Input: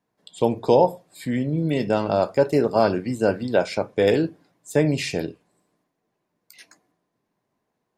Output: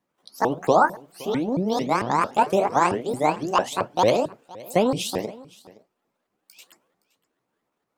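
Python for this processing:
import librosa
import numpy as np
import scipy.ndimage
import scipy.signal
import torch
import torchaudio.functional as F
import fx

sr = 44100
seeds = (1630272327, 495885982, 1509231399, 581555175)

y = fx.pitch_ramps(x, sr, semitones=11.5, every_ms=224)
y = y + 10.0 ** (-21.5 / 20.0) * np.pad(y, (int(518 * sr / 1000.0), 0))[:len(y)]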